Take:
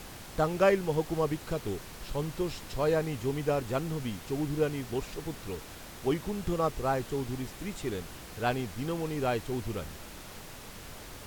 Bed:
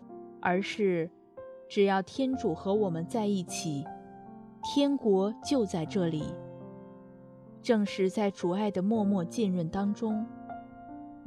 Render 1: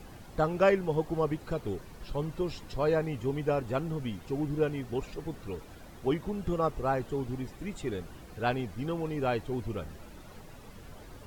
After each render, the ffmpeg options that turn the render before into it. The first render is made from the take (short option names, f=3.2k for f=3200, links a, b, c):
-af "afftdn=nr=11:nf=-46"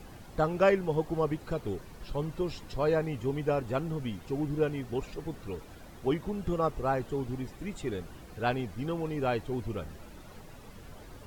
-af anull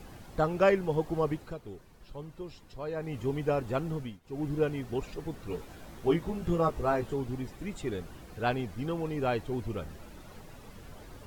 -filter_complex "[0:a]asettb=1/sr,asplit=3[a][b][c];[a]atrim=end=5.484[d];[b]atrim=start=5.48:end=7.14,asetpts=PTS-STARTPTS,afade=t=in:d=0.004:c=qsin,afade=t=out:st=1.656:d=0.004:c=qsin,asplit=2[e][f];[f]adelay=18,volume=-3.5dB[g];[e][g]amix=inputs=2:normalize=0,atrim=end_sample=73206[h];[c]atrim=start=7.136[i];[d][h]acrossfade=d=0.004:c1=hsin:c2=qsin[j];[j][i]acrossfade=d=0.004:c1=qsin:c2=hsin,asplit=5[k][l][m][n][o];[k]atrim=end=1.58,asetpts=PTS-STARTPTS,afade=t=out:st=1.32:d=0.26:silence=0.334965[p];[l]atrim=start=1.58:end=2.94,asetpts=PTS-STARTPTS,volume=-9.5dB[q];[m]atrim=start=2.94:end=4.2,asetpts=PTS-STARTPTS,afade=t=in:d=0.26:silence=0.334965,afade=t=out:st=1.02:d=0.24:silence=0.112202[r];[n]atrim=start=4.2:end=4.23,asetpts=PTS-STARTPTS,volume=-19dB[s];[o]atrim=start=4.23,asetpts=PTS-STARTPTS,afade=t=in:d=0.24:silence=0.112202[t];[p][q][r][s][t]concat=n=5:v=0:a=1"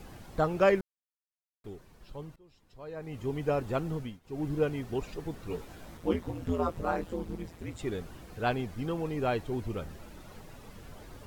-filter_complex "[0:a]asettb=1/sr,asplit=3[a][b][c];[a]atrim=end=5.974[d];[b]atrim=start=5.97:end=7.79,asetpts=PTS-STARTPTS,afade=t=in:d=0.004:c=qsin,afade=t=out:st=1.816:d=0.004:c=qsin,aeval=exprs='val(0)*sin(2*PI*84*n/s)':c=same[e];[c]atrim=start=7.786[f];[d][e]acrossfade=d=0.004:c1=hsin:c2=qsin[g];[g][f]acrossfade=d=0.004:c1=qsin:c2=hsin,asplit=4[h][i][j][k];[h]atrim=end=0.81,asetpts=PTS-STARTPTS,afade=t=out:st=0.806:d=0.004:c=hsin[l];[i]atrim=start=0.81:end=1.64,asetpts=PTS-STARTPTS,volume=0[m];[j]atrim=start=1.64:end=2.36,asetpts=PTS-STARTPTS,afade=t=in:d=0.004:c=hsin,afade=t=out:st=0.716:d=0.004:c=hsin:silence=0.0707946[n];[k]atrim=start=2.36,asetpts=PTS-STARTPTS,afade=t=in:d=1.2:silence=0.0707946[o];[l][m][n][o]concat=n=4:v=0:a=1"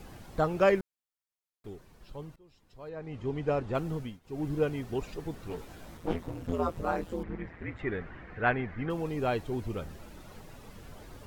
-filter_complex "[0:a]asettb=1/sr,asplit=3[a][b][c];[a]atrim=end=2.894[d];[b]atrim=start=2.89:end=3.75,asetpts=PTS-STARTPTS,afade=t=in:d=0.004:c=qsin,afade=t=out:st=0.856:d=0.004:c=qsin,adynamicsmooth=sensitivity=6.5:basefreq=5k[e];[c]atrim=start=3.746[f];[d][e]acrossfade=d=0.004:c1=hsin:c2=qsin[g];[g][f]acrossfade=d=0.004:c1=qsin:c2=hsin,asettb=1/sr,asplit=3[h][i][j];[h]atrim=end=5.484[k];[i]atrim=start=5.48:end=6.53,asetpts=PTS-STARTPTS,afade=t=in:d=0.004:c=qsin,afade=t=out:st=1.046:d=0.004:c=qsin,aeval=exprs='clip(val(0),-1,0.0126)':c=same[l];[j]atrim=start=6.526[m];[k][l]acrossfade=d=0.004:c1=hsin:c2=qsin[n];[n][m]acrossfade=d=0.004:c1=qsin:c2=hsin,asettb=1/sr,asplit=3[o][p][q];[o]atrim=end=7.234[r];[p]atrim=start=7.23:end=8.9,asetpts=PTS-STARTPTS,afade=t=in:d=0.004:c=qsin,afade=t=out:st=1.666:d=0.004:c=qsin,lowpass=f=1.9k:t=q:w=3.7[s];[q]atrim=start=8.896[t];[r][s]acrossfade=d=0.004:c1=hsin:c2=qsin[u];[u][t]acrossfade=d=0.004:c1=qsin:c2=hsin"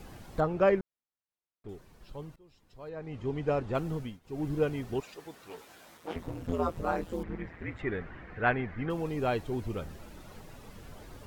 -filter_complex "[0:a]asettb=1/sr,asplit=3[a][b][c];[a]atrim=end=0.404[d];[b]atrim=start=0.4:end=1.69,asetpts=PTS-STARTPTS,afade=t=in:d=0.004:c=qsin,afade=t=out:st=1.286:d=0.004:c=qsin,lowpass=f=1.7k:p=1[e];[c]atrim=start=1.686[f];[d][e]acrossfade=d=0.004:c1=hsin:c2=qsin[g];[g][f]acrossfade=d=0.004:c1=qsin:c2=hsin,asettb=1/sr,asplit=3[h][i][j];[h]atrim=end=5.004[k];[i]atrim=start=5:end=6.16,asetpts=PTS-STARTPTS,afade=t=in:d=0.004:c=qsin,afade=t=out:st=1.156:d=0.004:c=qsin,highpass=f=840:p=1[l];[j]atrim=start=6.156[m];[k][l]acrossfade=d=0.004:c1=hsin:c2=qsin[n];[n][m]acrossfade=d=0.004:c1=qsin:c2=hsin,asettb=1/sr,asplit=3[o][p][q];[o]atrim=end=7.134[r];[p]atrim=start=7.13:end=7.82,asetpts=PTS-STARTPTS,afade=t=in:d=0.004:c=qsin,afade=t=out:st=0.686:d=0.004:c=qsin,highshelf=f=4.9k:g=5.5[s];[q]atrim=start=7.816[t];[r][s]acrossfade=d=0.004:c1=hsin:c2=qsin[u];[u][t]acrossfade=d=0.004:c1=qsin:c2=hsin"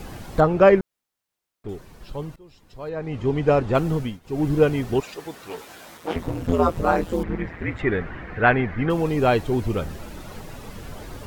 -af "volume=11dB,alimiter=limit=-3dB:level=0:latency=1"